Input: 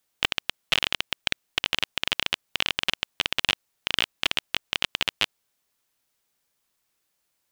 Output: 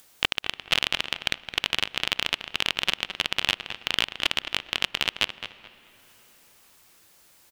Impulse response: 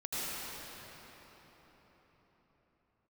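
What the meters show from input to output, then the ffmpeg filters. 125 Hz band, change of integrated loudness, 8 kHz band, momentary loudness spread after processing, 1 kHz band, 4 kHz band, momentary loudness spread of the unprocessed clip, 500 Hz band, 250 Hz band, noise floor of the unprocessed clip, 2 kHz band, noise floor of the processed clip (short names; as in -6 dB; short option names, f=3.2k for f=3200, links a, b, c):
+0.5 dB, +0.5 dB, 0.0 dB, 4 LU, +0.5 dB, +0.5 dB, 4 LU, +0.5 dB, +0.5 dB, -76 dBFS, +0.5 dB, -57 dBFS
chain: -filter_complex "[0:a]acompressor=mode=upward:threshold=-41dB:ratio=2.5,asplit=2[a][b];[b]adelay=215,lowpass=f=3.4k:p=1,volume=-9.5dB,asplit=2[c][d];[d]adelay=215,lowpass=f=3.4k:p=1,volume=0.27,asplit=2[e][f];[f]adelay=215,lowpass=f=3.4k:p=1,volume=0.27[g];[a][c][e][g]amix=inputs=4:normalize=0,asplit=2[h][i];[1:a]atrim=start_sample=2205,highshelf=f=4.3k:g=-9,adelay=125[j];[i][j]afir=irnorm=-1:irlink=0,volume=-25.5dB[k];[h][k]amix=inputs=2:normalize=0"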